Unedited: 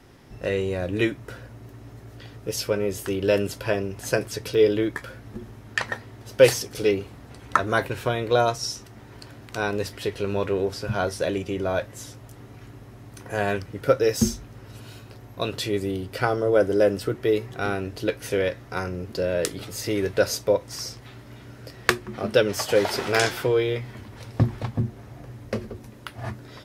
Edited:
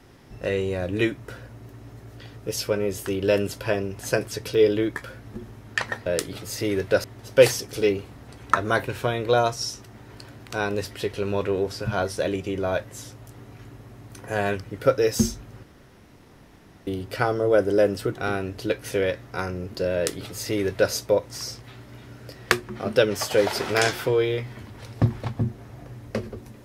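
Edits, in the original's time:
0:14.65–0:15.89: fill with room tone
0:17.17–0:17.53: remove
0:19.32–0:20.30: duplicate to 0:06.06

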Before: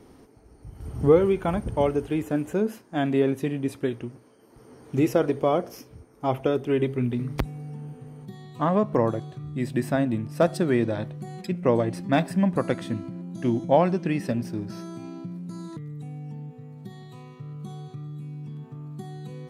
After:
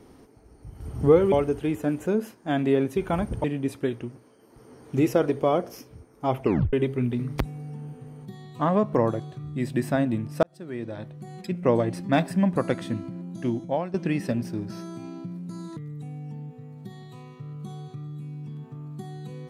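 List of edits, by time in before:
0:01.32–0:01.79: move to 0:03.44
0:06.42: tape stop 0.31 s
0:10.43–0:11.67: fade in
0:13.28–0:13.94: fade out, to −15 dB

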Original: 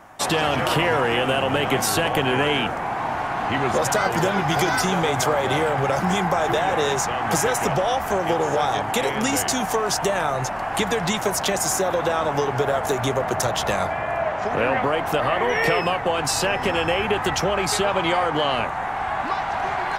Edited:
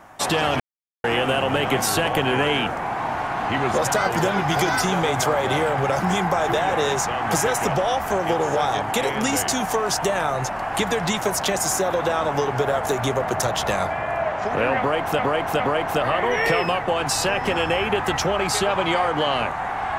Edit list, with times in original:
0:00.60–0:01.04: silence
0:14.78–0:15.19: repeat, 3 plays

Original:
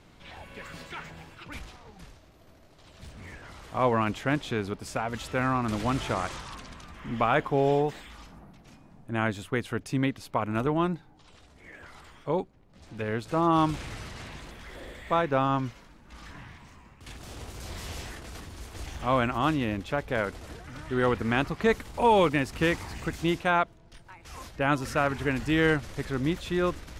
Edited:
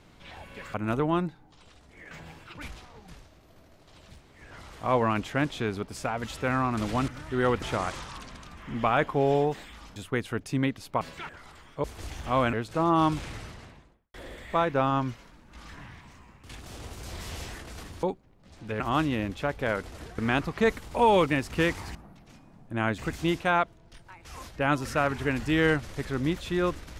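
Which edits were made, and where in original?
0:00.74–0:01.02: swap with 0:10.41–0:11.78
0:03.07–0:03.33: fill with room tone, crossfade 0.24 s
0:08.33–0:09.36: move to 0:22.98
0:12.33–0:13.10: swap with 0:18.60–0:19.29
0:13.81–0:14.71: fade out and dull
0:20.67–0:21.21: move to 0:05.99

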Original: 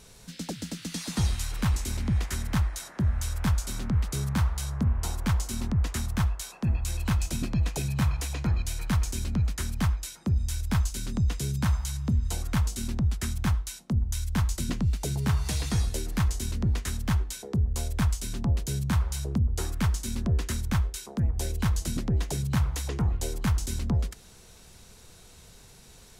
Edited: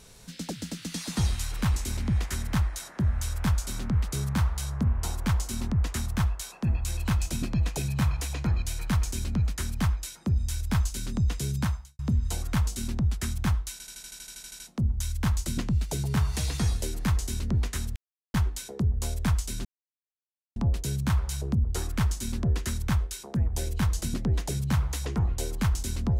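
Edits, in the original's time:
0:11.63–0:11.99: fade out quadratic
0:13.72: stutter 0.08 s, 12 plays
0:17.08: splice in silence 0.38 s
0:18.39: splice in silence 0.91 s

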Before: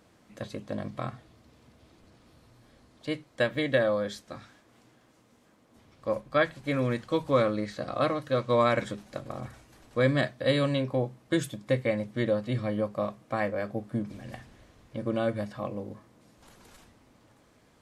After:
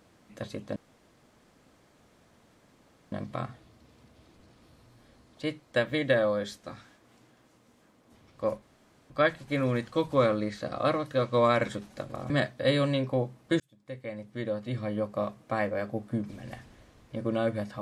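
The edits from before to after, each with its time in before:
0:00.76: splice in room tone 2.36 s
0:06.26: splice in room tone 0.48 s
0:09.46–0:10.11: remove
0:11.41–0:13.08: fade in

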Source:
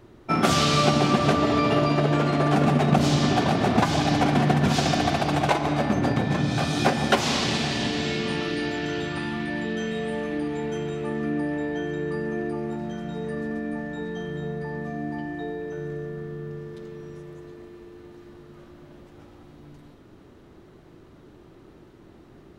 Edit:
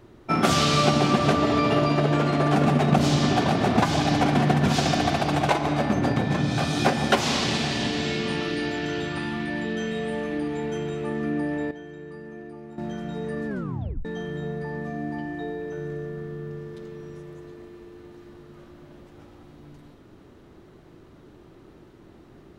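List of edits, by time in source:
0:11.71–0:12.78: clip gain −11.5 dB
0:13.48: tape stop 0.57 s

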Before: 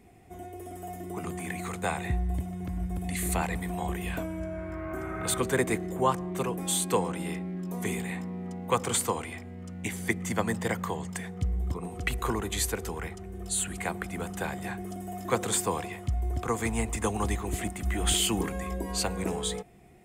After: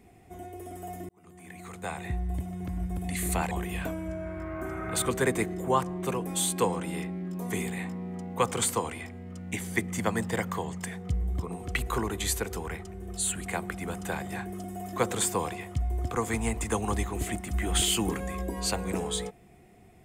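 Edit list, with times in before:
0:01.09–0:02.58: fade in
0:03.51–0:03.83: remove

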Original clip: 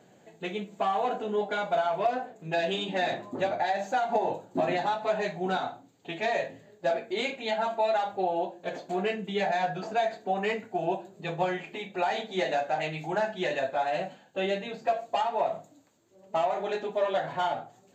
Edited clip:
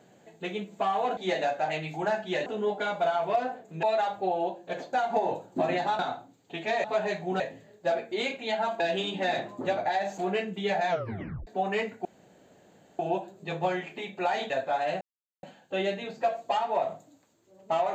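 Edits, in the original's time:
0:02.54–0:03.92: swap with 0:07.79–0:08.89
0:04.98–0:05.54: move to 0:06.39
0:09.60: tape stop 0.58 s
0:10.76: splice in room tone 0.94 s
0:12.27–0:13.56: move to 0:01.17
0:14.07: splice in silence 0.42 s

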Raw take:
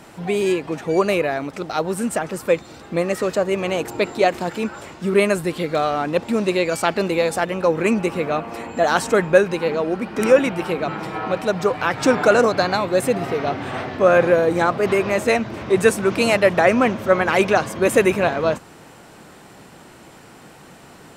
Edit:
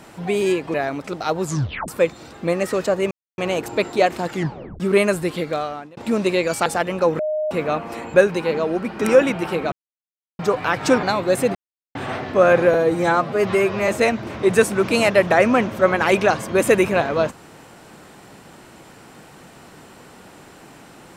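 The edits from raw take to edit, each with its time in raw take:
0:00.74–0:01.23: remove
0:01.90: tape stop 0.47 s
0:03.60: splice in silence 0.27 s
0:04.53: tape stop 0.49 s
0:05.57–0:06.19: fade out
0:06.88–0:07.28: remove
0:07.81–0:08.13: beep over 615 Hz −19.5 dBFS
0:08.76–0:09.31: remove
0:10.89–0:11.56: silence
0:12.20–0:12.68: remove
0:13.20–0:13.60: silence
0:14.39–0:15.15: time-stretch 1.5×

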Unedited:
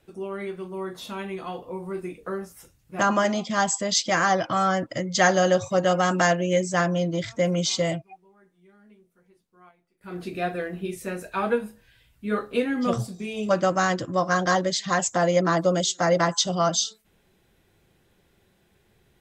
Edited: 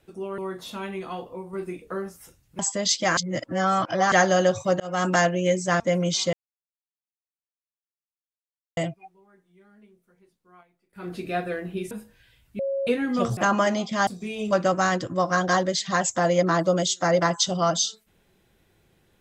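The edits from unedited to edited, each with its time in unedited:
0:00.38–0:00.74: remove
0:01.59–0:01.89: fade out, to −6 dB
0:02.95–0:03.65: move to 0:13.05
0:04.23–0:05.18: reverse
0:05.86–0:06.12: fade in
0:06.86–0:07.32: remove
0:07.85: splice in silence 2.44 s
0:10.99–0:11.59: remove
0:12.27–0:12.55: beep over 548 Hz −23.5 dBFS

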